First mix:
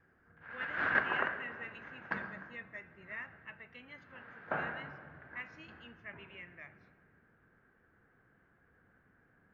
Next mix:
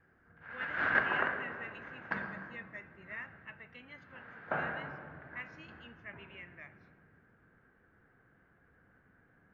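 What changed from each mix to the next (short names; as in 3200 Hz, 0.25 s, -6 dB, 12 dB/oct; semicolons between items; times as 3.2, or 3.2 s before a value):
background: send +6.0 dB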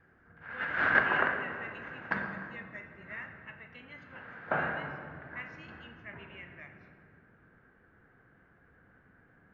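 speech: send +9.5 dB; background +4.0 dB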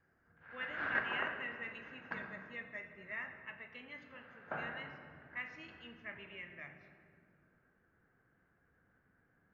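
background -11.0 dB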